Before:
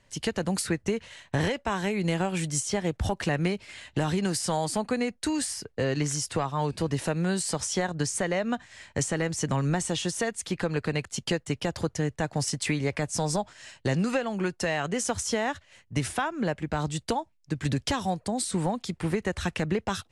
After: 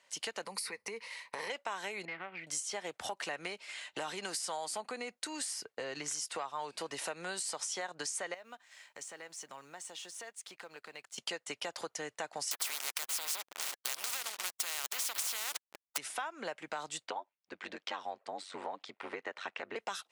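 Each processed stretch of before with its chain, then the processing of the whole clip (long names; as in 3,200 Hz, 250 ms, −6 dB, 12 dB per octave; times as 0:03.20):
0:00.45–0:01.50: EQ curve with evenly spaced ripples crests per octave 0.89, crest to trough 11 dB + downward compressor 5 to 1, threshold −28 dBFS
0:02.05–0:02.47: transistor ladder low-pass 2,300 Hz, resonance 70% + low-shelf EQ 470 Hz +11.5 dB + tube saturation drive 22 dB, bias 0.7
0:04.80–0:06.08: low-shelf EQ 260 Hz +7.5 dB + downward compressor 2 to 1, threshold −27 dBFS
0:08.34–0:11.18: mu-law and A-law mismatch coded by A + downward compressor 2 to 1, threshold −50 dBFS
0:12.51–0:15.98: spectral tilt +4.5 dB per octave + slack as between gear wheels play −28.5 dBFS + every bin compressed towards the loudest bin 4 to 1
0:17.06–0:19.76: band-pass filter 210–2,900 Hz + ring modulation 47 Hz
whole clip: high-pass filter 680 Hz 12 dB per octave; notch filter 1,700 Hz, Q 18; downward compressor 3 to 1, threshold −37 dBFS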